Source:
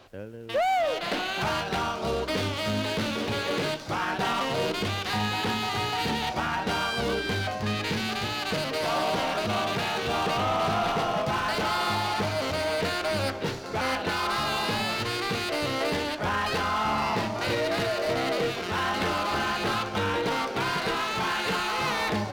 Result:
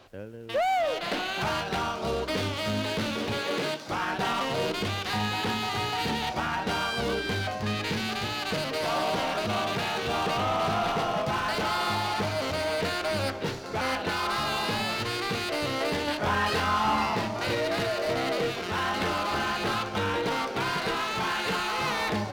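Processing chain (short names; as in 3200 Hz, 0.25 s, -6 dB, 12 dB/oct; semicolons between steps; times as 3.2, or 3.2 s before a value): 3.37–3.92 HPF 160 Hz 12 dB/oct; 16.05–17.06 doubler 24 ms -2 dB; gain -1 dB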